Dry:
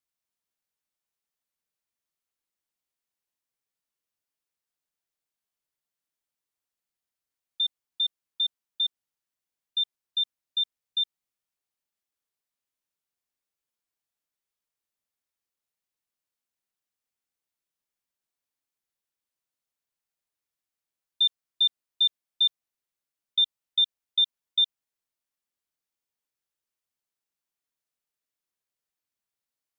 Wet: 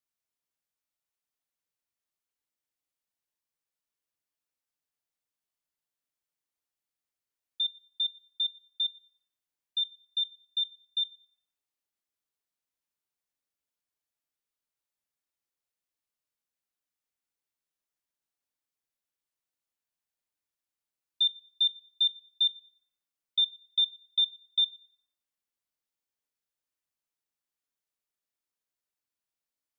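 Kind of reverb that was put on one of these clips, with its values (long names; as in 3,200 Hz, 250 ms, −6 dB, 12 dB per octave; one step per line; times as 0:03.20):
feedback delay network reverb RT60 0.84 s, high-frequency decay 0.65×, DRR 12 dB
level −3 dB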